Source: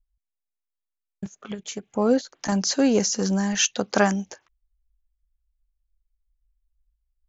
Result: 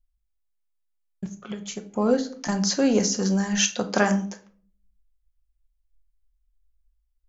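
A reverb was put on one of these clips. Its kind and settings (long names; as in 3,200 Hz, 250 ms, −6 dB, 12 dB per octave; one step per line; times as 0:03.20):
rectangular room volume 410 cubic metres, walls furnished, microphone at 0.94 metres
level −1.5 dB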